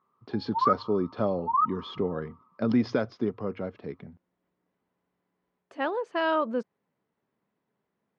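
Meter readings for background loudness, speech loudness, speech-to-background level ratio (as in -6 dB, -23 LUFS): -28.5 LUFS, -30.0 LUFS, -1.5 dB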